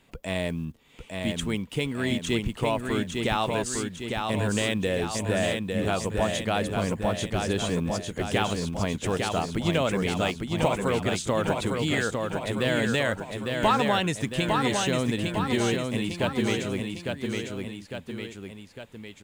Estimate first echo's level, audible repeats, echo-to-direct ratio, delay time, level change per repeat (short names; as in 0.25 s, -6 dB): -4.0 dB, 3, -2.5 dB, 0.854 s, -5.0 dB